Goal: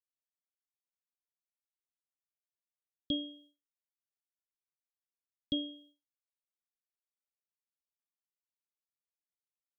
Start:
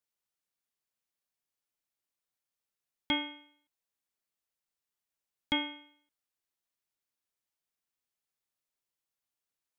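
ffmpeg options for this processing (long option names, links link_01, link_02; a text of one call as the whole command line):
ffmpeg -i in.wav -af "asuperstop=centerf=1400:order=20:qfactor=0.52,agate=range=-33dB:threshold=-59dB:ratio=3:detection=peak" out.wav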